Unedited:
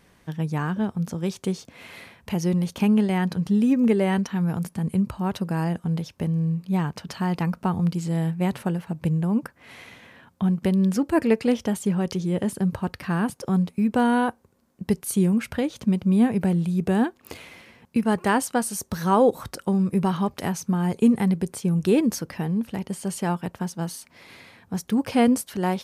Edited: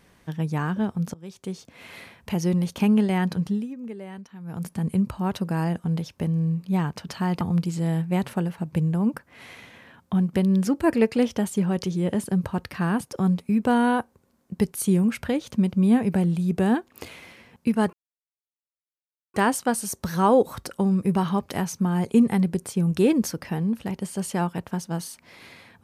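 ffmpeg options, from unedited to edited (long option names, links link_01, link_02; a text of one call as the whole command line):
ffmpeg -i in.wav -filter_complex "[0:a]asplit=6[link_01][link_02][link_03][link_04][link_05][link_06];[link_01]atrim=end=1.14,asetpts=PTS-STARTPTS,afade=type=out:start_time=1.136:duration=0.004:curve=hsin:silence=0.0794328[link_07];[link_02]atrim=start=1.14:end=3.68,asetpts=PTS-STARTPTS,afade=type=in:duration=0.81:silence=0.0794328,afade=type=out:start_time=2.27:duration=0.27:silence=0.149624[link_08];[link_03]atrim=start=3.68:end=4.44,asetpts=PTS-STARTPTS,volume=-16.5dB[link_09];[link_04]atrim=start=4.44:end=7.412,asetpts=PTS-STARTPTS,afade=type=in:duration=0.27:silence=0.149624[link_10];[link_05]atrim=start=7.698:end=18.22,asetpts=PTS-STARTPTS,afade=type=out:start_time=10.518:duration=0.004:curve=hsin,apad=pad_dur=1.41[link_11];[link_06]atrim=start=18.22,asetpts=PTS-STARTPTS,afade=type=in:duration=0.004:curve=hsin[link_12];[link_07][link_08][link_09][link_10]concat=n=4:v=0:a=1[link_13];[link_11][link_12]concat=n=2:v=0:a=1[link_14];[link_13][link_14]acrossfade=duration=0.004:curve1=hsin:curve2=hsin" out.wav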